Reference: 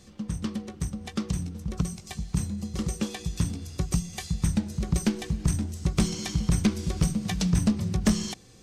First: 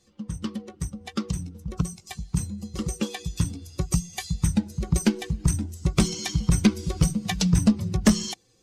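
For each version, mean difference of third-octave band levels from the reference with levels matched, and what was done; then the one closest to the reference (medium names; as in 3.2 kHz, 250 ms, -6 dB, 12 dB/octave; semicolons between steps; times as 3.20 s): 4.5 dB: expander on every frequency bin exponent 1.5; bass shelf 160 Hz -3.5 dB; trim +7 dB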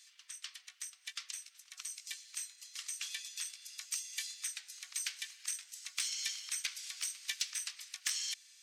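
18.5 dB: inverse Chebyshev high-pass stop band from 310 Hz, stop band 80 dB; saturation -19.5 dBFS, distortion -24 dB; trim -1 dB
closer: first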